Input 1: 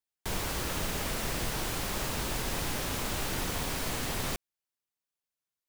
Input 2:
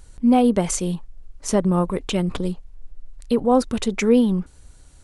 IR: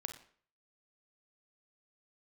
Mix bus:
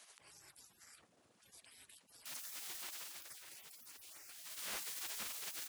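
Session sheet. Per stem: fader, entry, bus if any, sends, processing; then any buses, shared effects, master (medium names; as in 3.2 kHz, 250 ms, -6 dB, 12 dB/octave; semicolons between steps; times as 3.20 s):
2.94 s -7 dB -> 3.46 s -17 dB -> 4.29 s -17 dB -> 4.64 s -4.5 dB, 2.00 s, send -13 dB, echo send -7.5 dB, de-hum 156 Hz, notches 8; peak limiter -26.5 dBFS, peak gain reduction 7 dB
-12.0 dB, 0.00 s, no send, no echo send, spectrum-flattening compressor 10:1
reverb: on, RT60 0.50 s, pre-delay 35 ms
echo: feedback delay 62 ms, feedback 30%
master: spectral gate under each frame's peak -20 dB weak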